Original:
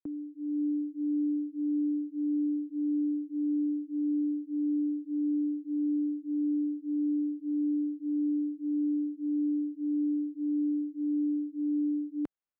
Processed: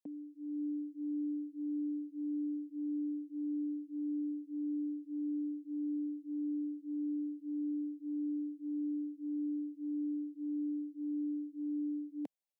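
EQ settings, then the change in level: high-pass 230 Hz; static phaser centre 350 Hz, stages 6; 0.0 dB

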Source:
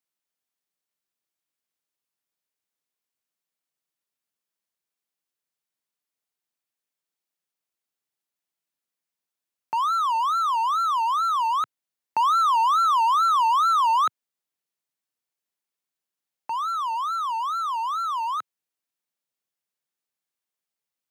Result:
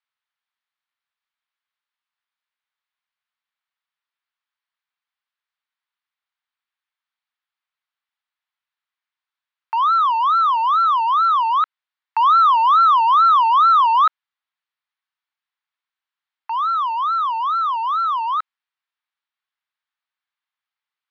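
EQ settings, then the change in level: high-pass 950 Hz 24 dB/octave; low-pass 3.6 kHz 24 dB/octave; peaking EQ 2.7 kHz -4 dB 0.69 oct; +8.0 dB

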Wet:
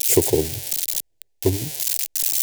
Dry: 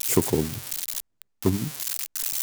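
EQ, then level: static phaser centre 500 Hz, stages 4; +7.0 dB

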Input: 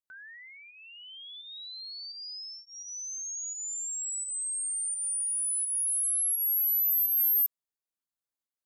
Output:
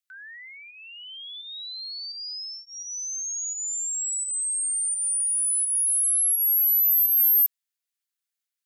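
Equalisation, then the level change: high-pass 1.5 kHz 24 dB/octave; +6.0 dB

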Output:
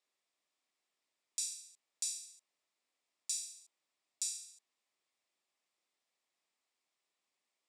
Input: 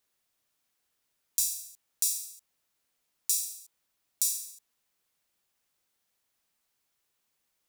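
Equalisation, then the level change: cabinet simulation 330–7500 Hz, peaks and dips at 470 Hz -4 dB, 870 Hz -3 dB, 1.5 kHz -9 dB, 3 kHz -4 dB, 4.3 kHz -4 dB, 6.2 kHz -8 dB; -1.5 dB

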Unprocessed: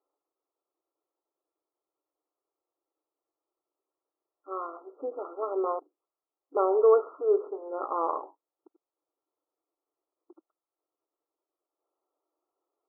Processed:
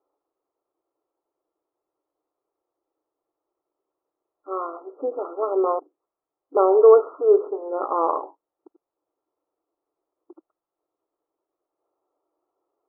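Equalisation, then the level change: low-pass 1.3 kHz; +8.0 dB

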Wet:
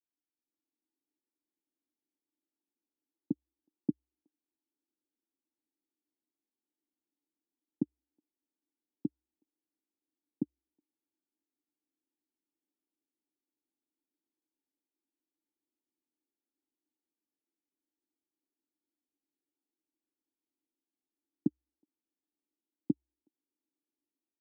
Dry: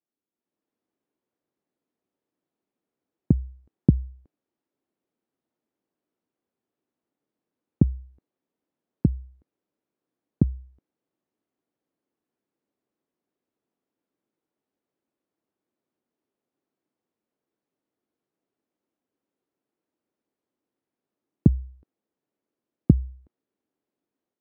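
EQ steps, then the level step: cascade formant filter u; high-pass 160 Hz 24 dB/octave; tilt EQ +3 dB/octave; +1.5 dB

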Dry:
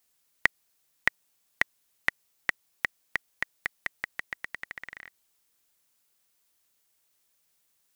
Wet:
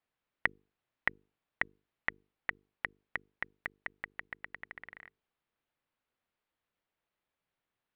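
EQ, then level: distance through air 460 m; hum notches 50/100/150/200/250/300/350/400/450 Hz; -2.5 dB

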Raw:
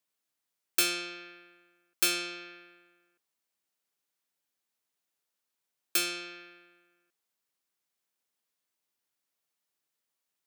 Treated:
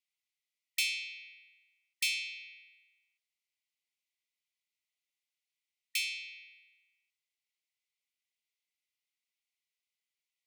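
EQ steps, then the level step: brick-wall FIR high-pass 1.9 kHz; tilt EQ -5 dB/octave; +7.0 dB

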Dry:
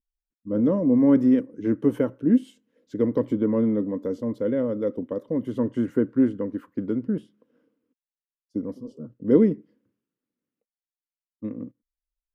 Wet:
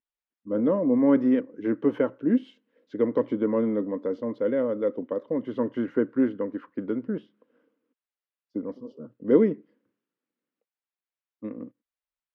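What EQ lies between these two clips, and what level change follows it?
high-pass 680 Hz 6 dB/octave; distance through air 280 m; +6.0 dB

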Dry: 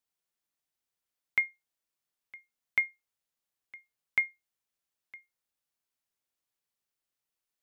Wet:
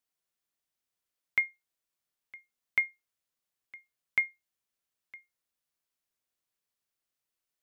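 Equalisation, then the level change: band-stop 850 Hz, Q 19; 0.0 dB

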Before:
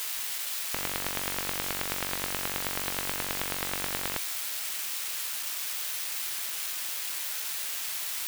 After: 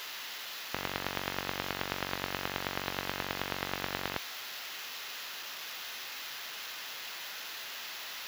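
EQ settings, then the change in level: boxcar filter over 5 samples; high-pass 55 Hz; band-stop 2.3 kHz, Q 22; 0.0 dB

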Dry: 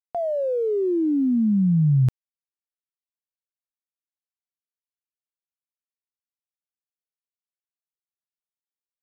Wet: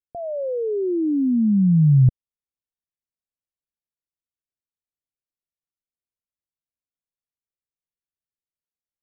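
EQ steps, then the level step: steep low-pass 660 Hz 36 dB/octave; bass shelf 180 Hz +10.5 dB; -2.5 dB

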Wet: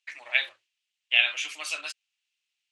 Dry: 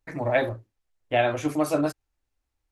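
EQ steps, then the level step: resonant high-pass 2.8 kHz, resonance Q 3.7; low-pass 8.7 kHz 24 dB/octave; +3.5 dB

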